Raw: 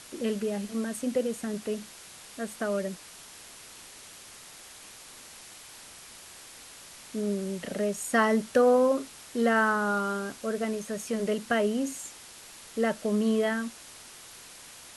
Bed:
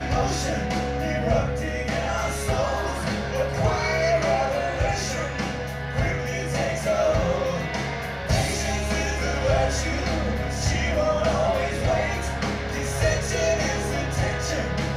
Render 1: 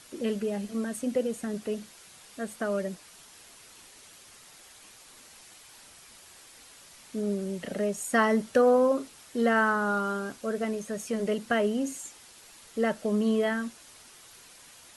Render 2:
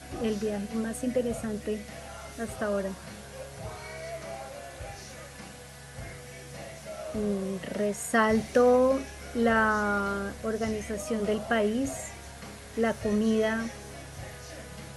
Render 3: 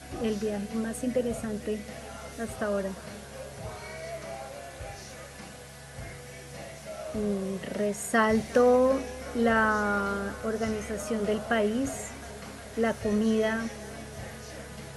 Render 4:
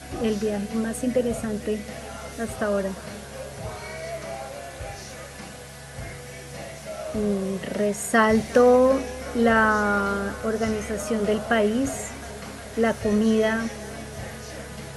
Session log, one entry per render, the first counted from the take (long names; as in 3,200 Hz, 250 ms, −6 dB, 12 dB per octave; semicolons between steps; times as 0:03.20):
broadband denoise 6 dB, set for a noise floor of −49 dBFS
mix in bed −17.5 dB
tape delay 358 ms, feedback 87%, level −20 dB, low-pass 5,700 Hz
level +5 dB